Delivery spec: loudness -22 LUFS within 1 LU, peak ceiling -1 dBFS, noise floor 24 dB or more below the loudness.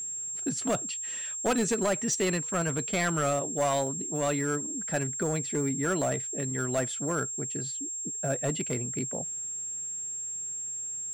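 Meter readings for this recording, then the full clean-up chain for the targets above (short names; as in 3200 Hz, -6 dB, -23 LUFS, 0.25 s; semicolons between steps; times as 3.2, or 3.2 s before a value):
clipped 1.2%; flat tops at -21.5 dBFS; steady tone 7500 Hz; tone level -33 dBFS; loudness -29.5 LUFS; peak -21.5 dBFS; loudness target -22.0 LUFS
-> clip repair -21.5 dBFS; notch 7500 Hz, Q 30; gain +7.5 dB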